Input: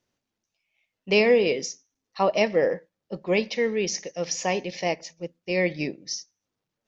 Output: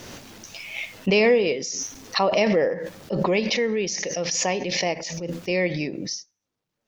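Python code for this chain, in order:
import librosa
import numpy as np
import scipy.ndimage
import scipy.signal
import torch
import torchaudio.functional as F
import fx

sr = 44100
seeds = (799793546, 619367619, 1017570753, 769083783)

y = fx.pre_swell(x, sr, db_per_s=22.0)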